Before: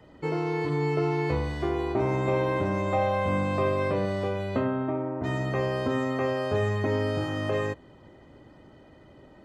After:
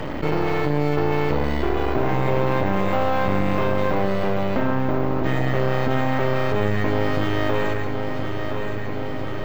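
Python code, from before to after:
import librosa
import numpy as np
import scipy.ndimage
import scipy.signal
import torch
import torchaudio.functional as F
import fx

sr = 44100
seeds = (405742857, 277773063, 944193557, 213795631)

p1 = x + fx.echo_single(x, sr, ms=139, db=-11.0, dry=0)
p2 = np.repeat(p1[::2], 2)[:len(p1)]
p3 = np.maximum(p2, 0.0)
p4 = fx.high_shelf(p3, sr, hz=6100.0, db=-10.0)
p5 = fx.echo_feedback(p4, sr, ms=1021, feedback_pct=48, wet_db=-15.0)
p6 = fx.env_flatten(p5, sr, amount_pct=70)
y = p6 * librosa.db_to_amplitude(7.0)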